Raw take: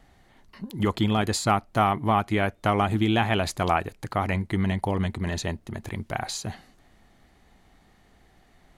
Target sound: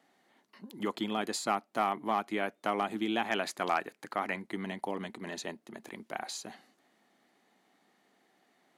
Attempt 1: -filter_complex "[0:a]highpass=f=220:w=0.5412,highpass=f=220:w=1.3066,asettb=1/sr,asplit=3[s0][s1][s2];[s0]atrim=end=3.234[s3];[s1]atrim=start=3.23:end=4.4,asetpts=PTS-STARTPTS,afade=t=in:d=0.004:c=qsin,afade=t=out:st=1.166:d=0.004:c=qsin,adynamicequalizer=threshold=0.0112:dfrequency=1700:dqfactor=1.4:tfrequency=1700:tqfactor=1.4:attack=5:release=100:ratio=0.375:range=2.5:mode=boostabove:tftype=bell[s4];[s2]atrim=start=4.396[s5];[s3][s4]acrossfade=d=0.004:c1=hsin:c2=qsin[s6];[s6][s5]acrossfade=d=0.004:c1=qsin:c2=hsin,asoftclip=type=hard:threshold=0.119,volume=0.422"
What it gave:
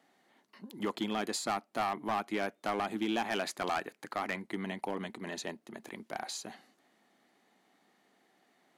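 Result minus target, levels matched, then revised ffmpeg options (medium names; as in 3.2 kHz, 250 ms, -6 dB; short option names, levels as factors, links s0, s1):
hard clipper: distortion +15 dB
-filter_complex "[0:a]highpass=f=220:w=0.5412,highpass=f=220:w=1.3066,asettb=1/sr,asplit=3[s0][s1][s2];[s0]atrim=end=3.234[s3];[s1]atrim=start=3.23:end=4.4,asetpts=PTS-STARTPTS,afade=t=in:d=0.004:c=qsin,afade=t=out:st=1.166:d=0.004:c=qsin,adynamicequalizer=threshold=0.0112:dfrequency=1700:dqfactor=1.4:tfrequency=1700:tqfactor=1.4:attack=5:release=100:ratio=0.375:range=2.5:mode=boostabove:tftype=bell[s4];[s2]atrim=start=4.396[s5];[s3][s4]acrossfade=d=0.004:c1=hsin:c2=qsin[s6];[s6][s5]acrossfade=d=0.004:c1=qsin:c2=hsin,asoftclip=type=hard:threshold=0.282,volume=0.422"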